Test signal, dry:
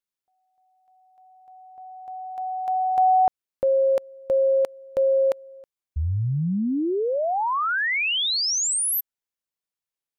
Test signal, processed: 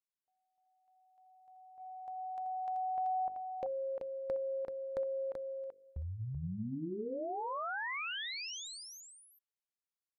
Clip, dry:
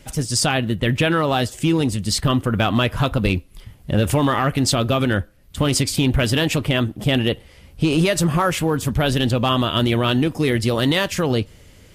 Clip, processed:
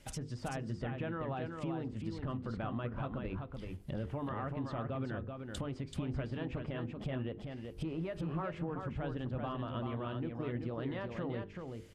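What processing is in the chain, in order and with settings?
notches 50/100/150/200/250/300/350/400/450/500 Hz; gate -42 dBFS, range -7 dB; treble ducked by the level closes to 1500 Hz, closed at -19.5 dBFS; compressor 2.5:1, threshold -39 dBFS; echo 0.383 s -5 dB; gain -5 dB

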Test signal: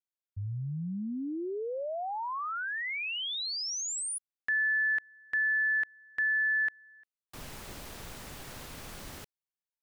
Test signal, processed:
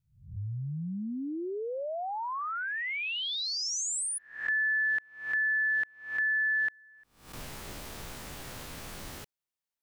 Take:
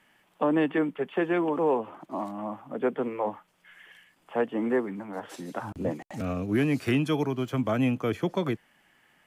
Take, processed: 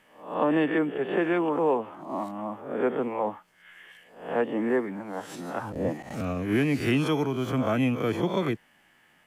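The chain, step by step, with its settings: spectral swells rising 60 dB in 0.51 s

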